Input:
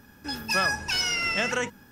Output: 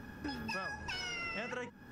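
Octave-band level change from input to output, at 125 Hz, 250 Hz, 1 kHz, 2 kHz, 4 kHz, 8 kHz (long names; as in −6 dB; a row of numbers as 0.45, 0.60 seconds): −8.5, −7.5, −12.0, −13.5, −16.0, −19.5 decibels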